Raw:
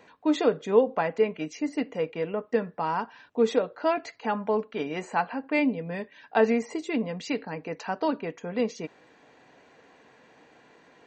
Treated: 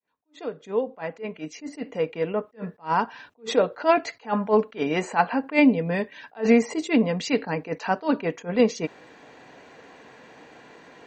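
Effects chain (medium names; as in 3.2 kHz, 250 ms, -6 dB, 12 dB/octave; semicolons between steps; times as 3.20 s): fade-in on the opening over 3.39 s; attacks held to a fixed rise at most 280 dB/s; trim +8 dB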